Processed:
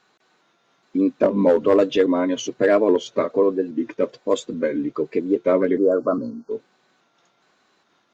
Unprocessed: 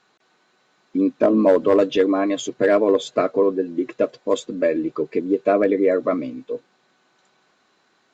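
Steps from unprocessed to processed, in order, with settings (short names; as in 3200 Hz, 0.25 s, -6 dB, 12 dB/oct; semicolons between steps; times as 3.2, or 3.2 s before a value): trilling pitch shifter -1.5 st, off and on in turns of 0.412 s; spectral delete 5.78–6.51, 1600–4200 Hz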